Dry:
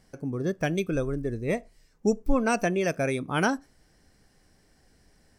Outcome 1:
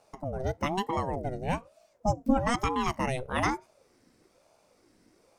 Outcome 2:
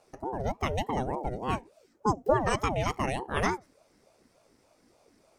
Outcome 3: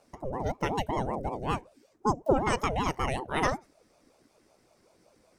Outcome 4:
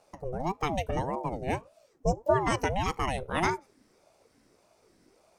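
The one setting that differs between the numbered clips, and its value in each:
ring modulator with a swept carrier, at: 1.1 Hz, 3.4 Hz, 5.3 Hz, 1.7 Hz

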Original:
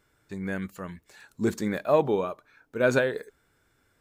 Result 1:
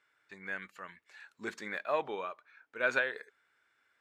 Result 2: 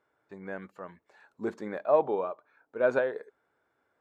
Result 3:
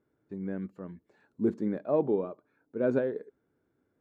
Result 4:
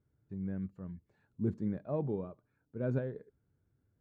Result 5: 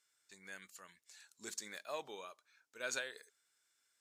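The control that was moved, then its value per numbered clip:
band-pass filter, frequency: 2 kHz, 750 Hz, 290 Hz, 110 Hz, 6.6 kHz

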